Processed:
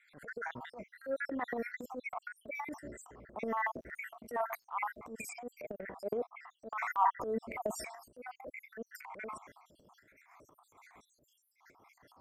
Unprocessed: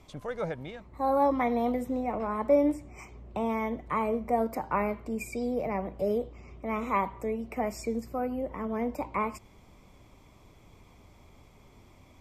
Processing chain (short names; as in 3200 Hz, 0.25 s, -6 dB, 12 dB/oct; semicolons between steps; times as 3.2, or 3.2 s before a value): random spectral dropouts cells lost 71%; HPF 730 Hz 6 dB/oct; resonant high shelf 2300 Hz -8 dB, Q 3; in parallel at -2.5 dB: compressor, threshold -46 dBFS, peak gain reduction 19.5 dB; on the sum: transient shaper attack -12 dB, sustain +9 dB; 3.52–5.04 crackle 94/s -62 dBFS; random-step tremolo; gain +3.5 dB